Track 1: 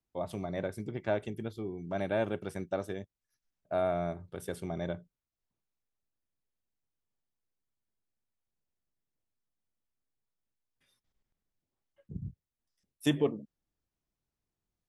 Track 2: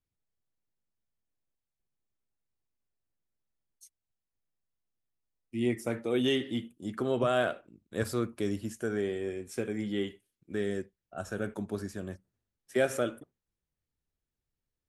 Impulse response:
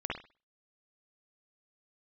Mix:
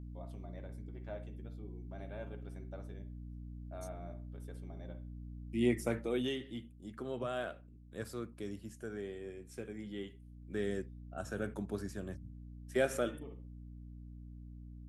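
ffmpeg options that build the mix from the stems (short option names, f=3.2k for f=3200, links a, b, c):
-filter_complex "[0:a]flanger=delay=6.9:depth=4.3:regen=54:speed=0.44:shape=sinusoidal,volume=-7dB,asplit=2[a][b];[b]volume=-18.5dB[c];[1:a]highpass=f=75:w=0.5412,highpass=f=75:w=1.3066,aeval=exprs='val(0)+0.00631*(sin(2*PI*60*n/s)+sin(2*PI*2*60*n/s)/2+sin(2*PI*3*60*n/s)/3+sin(2*PI*4*60*n/s)/4+sin(2*PI*5*60*n/s)/5)':c=same,volume=6dB,afade=t=out:st=5.83:d=0.52:silence=0.316228,afade=t=in:st=10.11:d=0.53:silence=0.446684,asplit=2[d][e];[e]apad=whole_len=656210[f];[a][f]sidechaincompress=threshold=-50dB:ratio=8:attack=16:release=402[g];[2:a]atrim=start_sample=2205[h];[c][h]afir=irnorm=-1:irlink=0[i];[g][d][i]amix=inputs=3:normalize=0"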